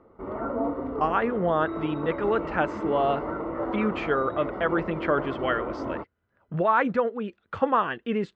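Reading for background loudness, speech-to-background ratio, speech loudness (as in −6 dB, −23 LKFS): −32.5 LKFS, 5.5 dB, −27.0 LKFS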